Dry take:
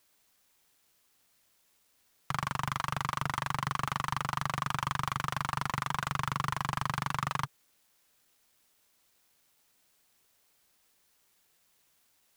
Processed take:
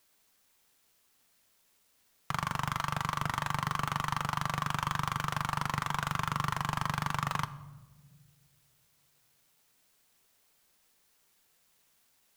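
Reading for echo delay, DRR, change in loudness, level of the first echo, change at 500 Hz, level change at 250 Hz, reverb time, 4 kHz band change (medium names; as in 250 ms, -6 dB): no echo, 12.0 dB, +0.5 dB, no echo, +0.5 dB, +1.5 dB, 1.3 s, +0.5 dB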